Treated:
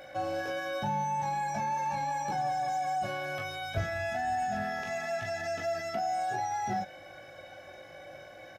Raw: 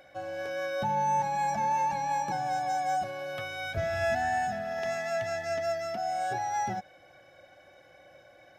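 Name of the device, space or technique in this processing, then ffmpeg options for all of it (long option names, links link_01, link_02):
de-esser from a sidechain: -filter_complex "[0:a]aecho=1:1:19|40:0.596|0.447,asplit=2[link_01][link_02];[link_02]highpass=frequency=6200:poles=1,apad=whole_len=380369[link_03];[link_01][link_03]sidechaincompress=threshold=-50dB:ratio=8:attack=1.6:release=37,volume=5.5dB"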